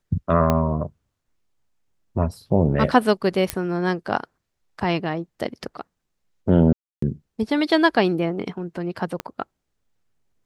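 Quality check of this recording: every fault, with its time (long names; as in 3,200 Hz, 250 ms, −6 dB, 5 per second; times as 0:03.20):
0:00.50: click −7 dBFS
0:03.50: click −5 dBFS
0:06.73–0:07.02: drop-out 294 ms
0:09.20: click −13 dBFS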